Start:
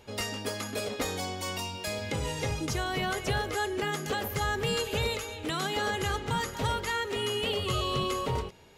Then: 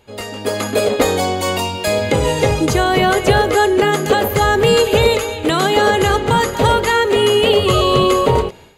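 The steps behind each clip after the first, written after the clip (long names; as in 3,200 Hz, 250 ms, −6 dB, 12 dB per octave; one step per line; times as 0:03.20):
notch filter 5,500 Hz, Q 6.2
dynamic equaliser 500 Hz, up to +7 dB, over −45 dBFS, Q 0.73
automatic gain control gain up to 12 dB
level +2 dB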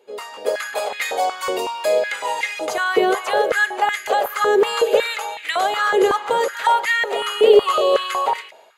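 high-pass on a step sequencer 5.4 Hz 420–2,000 Hz
level −8 dB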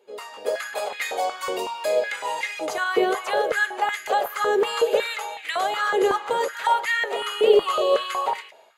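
flanger 1.2 Hz, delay 4.8 ms, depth 4.3 ms, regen +74%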